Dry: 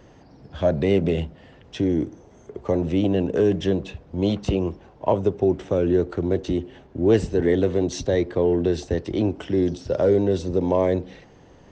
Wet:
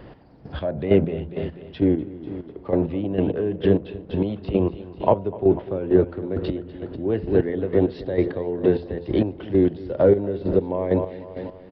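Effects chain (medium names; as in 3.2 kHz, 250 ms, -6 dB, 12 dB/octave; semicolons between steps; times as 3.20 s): treble shelf 4.2 kHz -8 dB; feedback delay 246 ms, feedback 50%, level -11.5 dB; low-pass that closes with the level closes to 2.8 kHz, closed at -17 dBFS; de-hum 86.73 Hz, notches 11; in parallel at -3 dB: compression, threshold -33 dBFS, peak gain reduction 19.5 dB; on the sum: resampled via 11.025 kHz; square tremolo 2.2 Hz, depth 65%, duty 30%; trim +2.5 dB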